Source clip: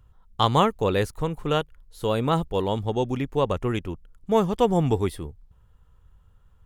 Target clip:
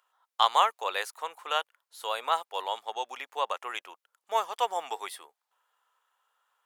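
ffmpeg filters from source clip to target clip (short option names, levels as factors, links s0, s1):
-af "highpass=f=730:w=0.5412,highpass=f=730:w=1.3066"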